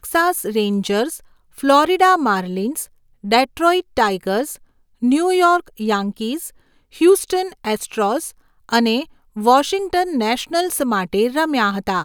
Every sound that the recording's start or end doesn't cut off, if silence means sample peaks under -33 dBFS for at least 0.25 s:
1.58–2.86 s
3.24–4.56 s
5.02–6.49 s
6.95–8.31 s
8.69–9.04 s

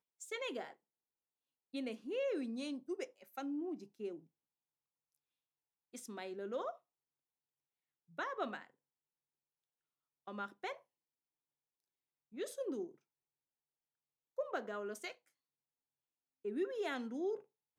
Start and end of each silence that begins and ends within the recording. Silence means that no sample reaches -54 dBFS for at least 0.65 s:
0.73–1.74 s
4.19–5.94 s
6.76–8.18 s
8.67–10.27 s
10.77–12.33 s
12.94–14.38 s
15.13–16.45 s

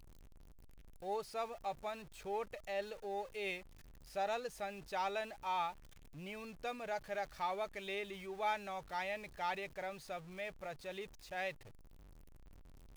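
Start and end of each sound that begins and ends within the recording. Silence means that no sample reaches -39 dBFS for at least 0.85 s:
1.06–11.51 s

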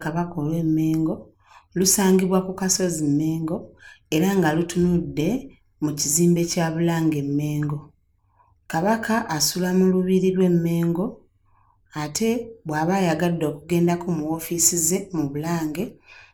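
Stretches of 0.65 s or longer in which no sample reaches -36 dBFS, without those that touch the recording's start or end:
7.83–8.70 s
11.13–11.94 s

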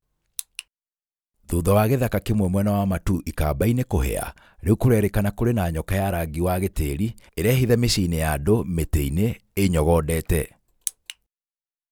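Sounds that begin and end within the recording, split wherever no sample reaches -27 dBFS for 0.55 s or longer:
1.49–11.10 s

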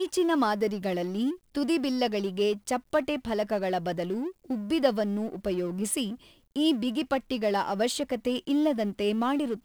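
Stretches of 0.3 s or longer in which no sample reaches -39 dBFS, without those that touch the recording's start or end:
6.15–6.56 s

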